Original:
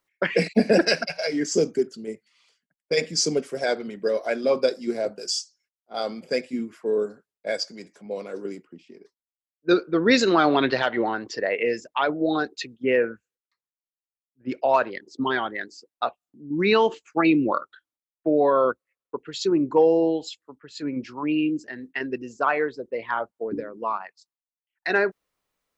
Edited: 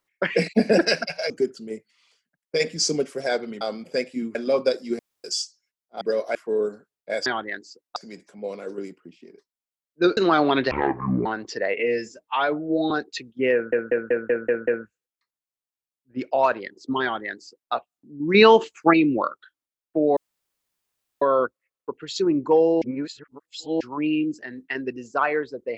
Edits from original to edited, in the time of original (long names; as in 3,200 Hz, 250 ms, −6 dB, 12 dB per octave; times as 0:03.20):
0:01.30–0:01.67: remove
0:03.98–0:04.32: swap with 0:05.98–0:06.72
0:04.96–0:05.21: fill with room tone
0:09.84–0:10.23: remove
0:10.77–0:11.07: play speed 55%
0:11.61–0:12.35: time-stretch 1.5×
0:12.98: stutter 0.19 s, 7 plays
0:15.33–0:16.03: duplicate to 0:07.63
0:16.65–0:17.24: clip gain +6 dB
0:18.47: splice in room tone 1.05 s
0:20.07–0:21.06: reverse